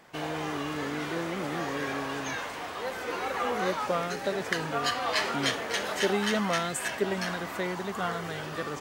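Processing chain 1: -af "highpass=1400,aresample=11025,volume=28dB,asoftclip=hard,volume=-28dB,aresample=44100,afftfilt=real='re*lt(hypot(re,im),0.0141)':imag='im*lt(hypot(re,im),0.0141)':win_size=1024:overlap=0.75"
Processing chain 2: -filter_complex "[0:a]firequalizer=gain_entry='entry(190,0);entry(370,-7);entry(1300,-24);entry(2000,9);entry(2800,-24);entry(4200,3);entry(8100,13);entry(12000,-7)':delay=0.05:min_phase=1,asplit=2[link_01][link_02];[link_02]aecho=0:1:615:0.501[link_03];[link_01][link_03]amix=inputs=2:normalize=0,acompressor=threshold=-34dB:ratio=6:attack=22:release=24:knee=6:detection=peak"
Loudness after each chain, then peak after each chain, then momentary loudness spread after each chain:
−47.0, −33.0 LKFS; −35.5, −14.0 dBFS; 1, 5 LU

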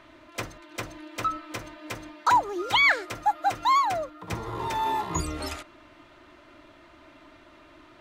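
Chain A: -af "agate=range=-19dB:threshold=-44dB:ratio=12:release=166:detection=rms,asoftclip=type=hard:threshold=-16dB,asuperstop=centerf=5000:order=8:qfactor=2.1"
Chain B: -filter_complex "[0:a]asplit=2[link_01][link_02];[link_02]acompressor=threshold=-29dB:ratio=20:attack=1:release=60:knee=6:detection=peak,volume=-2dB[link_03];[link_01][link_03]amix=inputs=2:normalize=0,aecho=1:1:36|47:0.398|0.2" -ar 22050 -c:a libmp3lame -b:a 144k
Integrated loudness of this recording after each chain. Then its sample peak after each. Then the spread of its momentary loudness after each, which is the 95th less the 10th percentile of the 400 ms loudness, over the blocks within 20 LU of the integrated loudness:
−26.0, −24.5 LKFS; −14.0, −8.5 dBFS; 18, 15 LU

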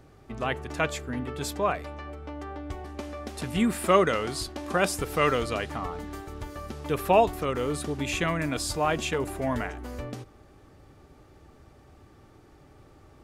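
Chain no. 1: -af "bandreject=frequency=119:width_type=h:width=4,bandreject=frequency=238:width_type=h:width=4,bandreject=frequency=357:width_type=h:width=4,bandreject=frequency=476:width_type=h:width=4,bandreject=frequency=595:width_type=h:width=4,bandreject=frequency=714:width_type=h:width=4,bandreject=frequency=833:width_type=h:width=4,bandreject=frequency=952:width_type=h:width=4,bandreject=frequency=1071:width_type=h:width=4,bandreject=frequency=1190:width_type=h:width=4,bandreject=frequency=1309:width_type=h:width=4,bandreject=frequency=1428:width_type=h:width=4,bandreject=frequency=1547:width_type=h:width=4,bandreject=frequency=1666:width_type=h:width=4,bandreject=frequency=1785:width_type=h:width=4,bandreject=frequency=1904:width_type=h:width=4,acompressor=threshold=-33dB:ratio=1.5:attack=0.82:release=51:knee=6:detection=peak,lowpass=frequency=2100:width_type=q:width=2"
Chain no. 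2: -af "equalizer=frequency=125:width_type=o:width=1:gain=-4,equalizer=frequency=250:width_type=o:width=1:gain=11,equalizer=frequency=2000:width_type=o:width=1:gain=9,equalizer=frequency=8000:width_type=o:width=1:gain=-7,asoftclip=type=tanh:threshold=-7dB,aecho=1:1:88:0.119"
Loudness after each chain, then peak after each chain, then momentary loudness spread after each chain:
−32.0, −24.5 LKFS; −12.5, −7.5 dBFS; 12, 15 LU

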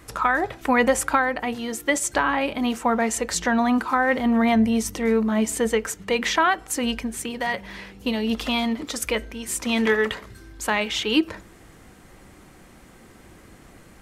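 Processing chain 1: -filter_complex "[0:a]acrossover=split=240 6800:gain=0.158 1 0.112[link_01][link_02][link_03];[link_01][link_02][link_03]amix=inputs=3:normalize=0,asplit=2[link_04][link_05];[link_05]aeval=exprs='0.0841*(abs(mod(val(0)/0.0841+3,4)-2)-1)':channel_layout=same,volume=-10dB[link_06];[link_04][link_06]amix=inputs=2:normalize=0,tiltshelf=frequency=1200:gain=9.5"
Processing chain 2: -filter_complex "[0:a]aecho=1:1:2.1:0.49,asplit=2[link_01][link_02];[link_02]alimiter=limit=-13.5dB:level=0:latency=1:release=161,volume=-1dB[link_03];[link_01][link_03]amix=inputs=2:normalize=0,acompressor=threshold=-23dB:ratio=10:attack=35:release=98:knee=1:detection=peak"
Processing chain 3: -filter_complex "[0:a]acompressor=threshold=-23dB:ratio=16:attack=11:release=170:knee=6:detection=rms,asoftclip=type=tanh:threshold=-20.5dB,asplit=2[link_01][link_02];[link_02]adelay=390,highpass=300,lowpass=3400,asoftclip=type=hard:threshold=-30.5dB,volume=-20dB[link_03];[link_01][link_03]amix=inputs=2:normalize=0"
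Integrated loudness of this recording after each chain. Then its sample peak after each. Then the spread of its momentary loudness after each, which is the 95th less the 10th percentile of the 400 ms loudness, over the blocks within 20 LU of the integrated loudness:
−19.0, −23.5, −30.0 LKFS; −3.5, −5.5, −20.5 dBFS; 9, 21, 20 LU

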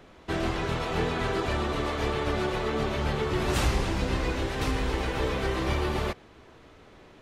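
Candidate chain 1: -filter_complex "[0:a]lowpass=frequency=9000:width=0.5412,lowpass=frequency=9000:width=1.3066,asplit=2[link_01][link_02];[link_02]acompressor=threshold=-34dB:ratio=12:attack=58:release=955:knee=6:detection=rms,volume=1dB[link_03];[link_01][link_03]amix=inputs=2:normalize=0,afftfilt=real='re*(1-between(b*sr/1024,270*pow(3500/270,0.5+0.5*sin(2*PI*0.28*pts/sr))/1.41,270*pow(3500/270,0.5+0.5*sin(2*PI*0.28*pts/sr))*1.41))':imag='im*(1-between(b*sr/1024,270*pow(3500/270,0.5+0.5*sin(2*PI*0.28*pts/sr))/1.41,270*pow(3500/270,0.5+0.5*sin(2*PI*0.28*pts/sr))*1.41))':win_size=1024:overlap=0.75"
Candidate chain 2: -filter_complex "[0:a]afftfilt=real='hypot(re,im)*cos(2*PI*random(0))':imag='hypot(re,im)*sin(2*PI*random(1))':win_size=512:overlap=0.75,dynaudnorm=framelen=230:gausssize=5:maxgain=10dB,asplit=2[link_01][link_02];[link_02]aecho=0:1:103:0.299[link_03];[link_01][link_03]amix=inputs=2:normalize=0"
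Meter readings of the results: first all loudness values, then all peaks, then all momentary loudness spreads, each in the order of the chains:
−27.0, −24.5 LKFS; −12.5, −8.5 dBFS; 2, 5 LU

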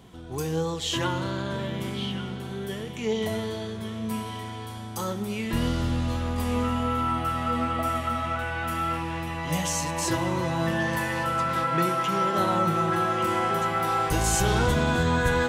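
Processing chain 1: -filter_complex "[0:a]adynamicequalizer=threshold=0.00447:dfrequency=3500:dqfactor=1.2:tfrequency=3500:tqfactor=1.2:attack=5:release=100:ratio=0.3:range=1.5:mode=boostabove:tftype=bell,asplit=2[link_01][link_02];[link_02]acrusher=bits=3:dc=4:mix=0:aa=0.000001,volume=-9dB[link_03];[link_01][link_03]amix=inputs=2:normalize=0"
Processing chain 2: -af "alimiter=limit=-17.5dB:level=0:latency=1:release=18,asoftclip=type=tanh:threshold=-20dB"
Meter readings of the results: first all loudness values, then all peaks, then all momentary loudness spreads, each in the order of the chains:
−25.0, −29.0 LKFS; −8.5, −21.0 dBFS; 10, 7 LU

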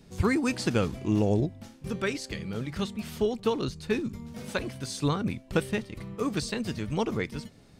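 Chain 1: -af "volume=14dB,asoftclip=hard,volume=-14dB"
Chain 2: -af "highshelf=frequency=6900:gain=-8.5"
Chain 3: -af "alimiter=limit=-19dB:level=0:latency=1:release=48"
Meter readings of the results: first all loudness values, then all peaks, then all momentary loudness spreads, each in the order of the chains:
−30.0, −30.5, −32.5 LKFS; −14.0, −10.0, −19.0 dBFS; 9, 9, 7 LU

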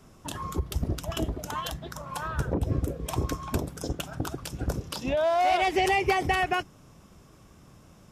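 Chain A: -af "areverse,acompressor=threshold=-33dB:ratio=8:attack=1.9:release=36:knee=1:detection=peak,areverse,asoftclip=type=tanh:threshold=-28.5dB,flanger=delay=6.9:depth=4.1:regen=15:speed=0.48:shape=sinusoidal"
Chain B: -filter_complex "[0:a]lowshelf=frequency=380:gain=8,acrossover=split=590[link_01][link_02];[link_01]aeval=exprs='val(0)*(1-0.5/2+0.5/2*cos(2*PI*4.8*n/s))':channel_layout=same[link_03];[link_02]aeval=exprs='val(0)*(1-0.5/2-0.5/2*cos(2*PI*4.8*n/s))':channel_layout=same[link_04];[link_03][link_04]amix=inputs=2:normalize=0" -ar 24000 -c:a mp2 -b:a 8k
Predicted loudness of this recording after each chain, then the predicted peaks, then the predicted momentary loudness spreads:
−42.0, −28.0 LKFS; −30.5, −9.5 dBFS; 18, 11 LU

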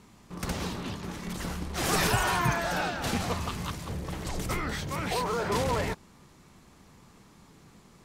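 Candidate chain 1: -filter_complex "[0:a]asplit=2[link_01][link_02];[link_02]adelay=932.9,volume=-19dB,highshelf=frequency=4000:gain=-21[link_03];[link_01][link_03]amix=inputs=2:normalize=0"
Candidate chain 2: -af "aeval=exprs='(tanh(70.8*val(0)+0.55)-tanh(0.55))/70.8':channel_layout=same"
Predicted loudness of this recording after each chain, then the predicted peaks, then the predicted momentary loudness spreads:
−30.5, −39.5 LKFS; −13.0, −33.5 dBFS; 21, 21 LU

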